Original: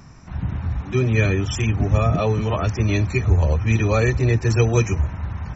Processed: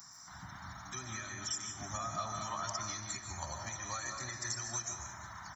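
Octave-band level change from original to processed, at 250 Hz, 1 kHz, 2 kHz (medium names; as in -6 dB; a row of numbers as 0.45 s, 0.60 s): -27.0 dB, -10.5 dB, -16.0 dB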